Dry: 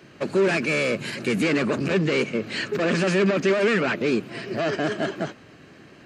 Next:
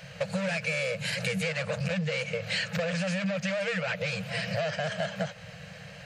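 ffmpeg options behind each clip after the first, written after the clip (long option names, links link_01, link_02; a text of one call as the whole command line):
ffmpeg -i in.wav -af "afftfilt=real='re*(1-between(b*sr/4096,200,460))':imag='im*(1-between(b*sr/4096,200,460))':win_size=4096:overlap=0.75,equalizer=frequency=1100:width=1.9:gain=-9,acompressor=threshold=-34dB:ratio=10,volume=7dB" out.wav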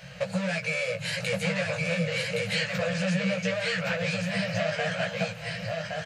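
ffmpeg -i in.wav -af "flanger=delay=16:depth=2.7:speed=0.35,aecho=1:1:1118:0.708,volume=3.5dB" out.wav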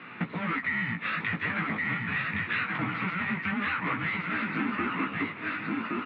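ffmpeg -i in.wav -af "highpass=frequency=480:width_type=q:width=0.5412,highpass=frequency=480:width_type=q:width=1.307,lowpass=frequency=3200:width_type=q:width=0.5176,lowpass=frequency=3200:width_type=q:width=0.7071,lowpass=frequency=3200:width_type=q:width=1.932,afreqshift=-380,highpass=160,acompressor=threshold=-33dB:ratio=2.5,volume=5dB" out.wav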